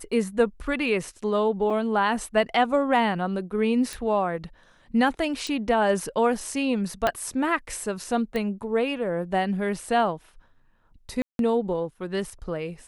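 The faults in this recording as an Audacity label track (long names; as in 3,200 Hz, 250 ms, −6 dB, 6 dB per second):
1.700000	1.700000	drop-out 4.7 ms
3.930000	3.930000	click
5.470000	5.470000	click
7.070000	7.070000	click −9 dBFS
8.360000	8.360000	click −17 dBFS
11.220000	11.390000	drop-out 172 ms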